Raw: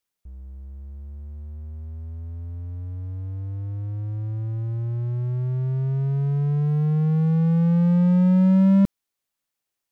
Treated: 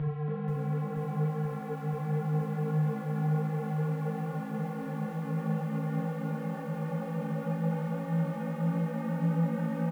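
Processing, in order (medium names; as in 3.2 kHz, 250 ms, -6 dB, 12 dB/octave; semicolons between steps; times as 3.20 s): high-pass 1.2 kHz 6 dB/octave; compression 2:1, threshold -38 dBFS, peak gain reduction 4 dB; Paulstretch 12×, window 1.00 s, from 6.77 s; distance through air 480 m; frequency-shifting echo 280 ms, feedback 32%, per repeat +56 Hz, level -4 dB; reverberation RT60 0.50 s, pre-delay 6 ms, DRR 1.5 dB; bit-crushed delay 480 ms, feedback 80%, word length 10-bit, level -6 dB; trim +2.5 dB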